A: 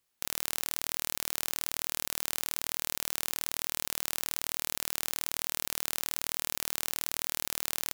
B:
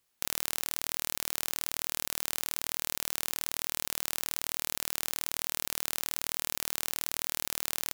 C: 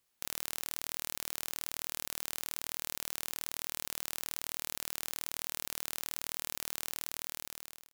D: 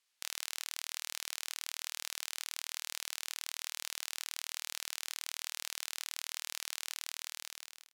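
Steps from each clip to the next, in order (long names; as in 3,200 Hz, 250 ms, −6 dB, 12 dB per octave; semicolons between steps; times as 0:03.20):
speech leveller 0.5 s
fade-out on the ending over 1.05 s; soft clipping −6 dBFS, distortion −27 dB; level −2 dB
resonant band-pass 3,600 Hz, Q 0.58; level +3 dB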